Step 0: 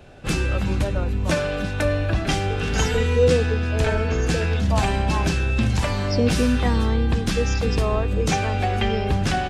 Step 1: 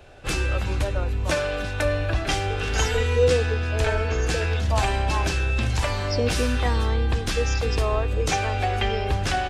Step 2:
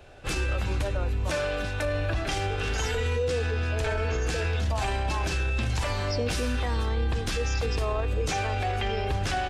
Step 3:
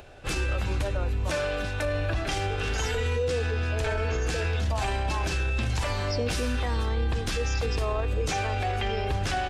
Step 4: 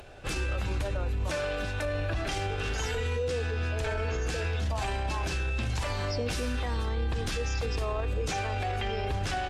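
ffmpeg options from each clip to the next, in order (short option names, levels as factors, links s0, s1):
-af "equalizer=f=190:w=1.3:g=-12"
-af "alimiter=limit=0.133:level=0:latency=1:release=18,volume=0.794"
-af "acompressor=mode=upward:threshold=0.00562:ratio=2.5"
-af "alimiter=limit=0.0708:level=0:latency=1:release=44" -ar 48000 -c:a libopus -b:a 64k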